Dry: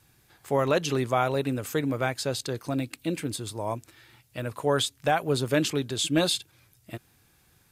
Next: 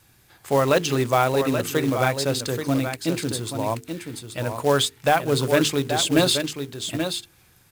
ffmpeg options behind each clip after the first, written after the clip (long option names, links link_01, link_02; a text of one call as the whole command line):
ffmpeg -i in.wav -af "bandreject=frequency=50:width_type=h:width=6,bandreject=frequency=100:width_type=h:width=6,bandreject=frequency=150:width_type=h:width=6,bandreject=frequency=200:width_type=h:width=6,bandreject=frequency=250:width_type=h:width=6,bandreject=frequency=300:width_type=h:width=6,bandreject=frequency=350:width_type=h:width=6,bandreject=frequency=400:width_type=h:width=6,bandreject=frequency=450:width_type=h:width=6,aecho=1:1:830:0.422,acrusher=bits=4:mode=log:mix=0:aa=0.000001,volume=5dB" out.wav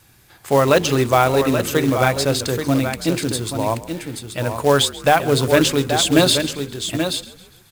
ffmpeg -i in.wav -filter_complex "[0:a]asplit=5[link_01][link_02][link_03][link_04][link_05];[link_02]adelay=135,afreqshift=-45,volume=-18.5dB[link_06];[link_03]adelay=270,afreqshift=-90,volume=-24dB[link_07];[link_04]adelay=405,afreqshift=-135,volume=-29.5dB[link_08];[link_05]adelay=540,afreqshift=-180,volume=-35dB[link_09];[link_01][link_06][link_07][link_08][link_09]amix=inputs=5:normalize=0,volume=4.5dB" out.wav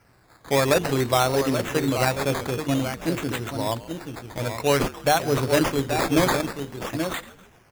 ffmpeg -i in.wav -af "acrusher=samples=12:mix=1:aa=0.000001:lfo=1:lforange=7.2:lforate=0.52,volume=-5.5dB" out.wav